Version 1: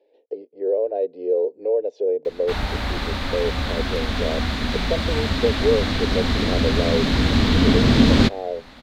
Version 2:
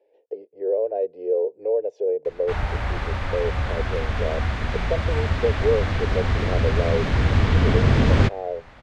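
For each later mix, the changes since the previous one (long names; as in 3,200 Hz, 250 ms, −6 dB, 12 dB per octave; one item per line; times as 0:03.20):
background: add high-frequency loss of the air 70 metres
master: add graphic EQ with 15 bands 100 Hz +5 dB, 250 Hz −11 dB, 4,000 Hz −12 dB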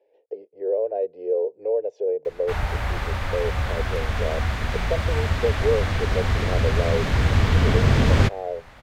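background: remove high-frequency loss of the air 70 metres
master: add parametric band 290 Hz −2.5 dB 1.1 octaves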